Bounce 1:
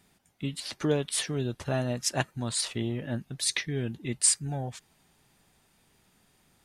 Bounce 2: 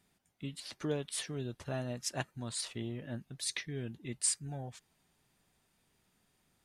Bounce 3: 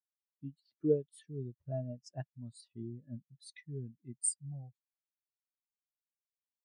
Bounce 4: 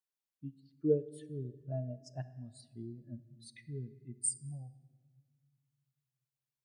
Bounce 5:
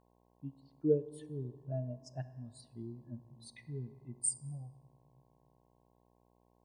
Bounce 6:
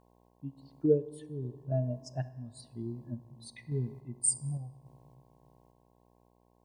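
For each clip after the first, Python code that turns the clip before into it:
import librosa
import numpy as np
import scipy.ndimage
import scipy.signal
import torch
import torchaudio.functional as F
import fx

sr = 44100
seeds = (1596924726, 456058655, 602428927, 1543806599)

y1 = fx.notch(x, sr, hz=830.0, q=27.0)
y1 = F.gain(torch.from_numpy(y1), -8.5).numpy()
y2 = fx.spectral_expand(y1, sr, expansion=2.5)
y2 = F.gain(torch.from_numpy(y2), 1.0).numpy()
y3 = fx.room_shoebox(y2, sr, seeds[0], volume_m3=1700.0, walls='mixed', distance_m=0.4)
y3 = F.gain(torch.from_numpy(y3), -1.0).numpy()
y4 = fx.dmg_buzz(y3, sr, base_hz=60.0, harmonics=18, level_db=-71.0, tilt_db=-2, odd_only=False)
y5 = fx.tremolo_random(y4, sr, seeds[1], hz=3.5, depth_pct=55)
y5 = F.gain(torch.from_numpy(y5), 9.0).numpy()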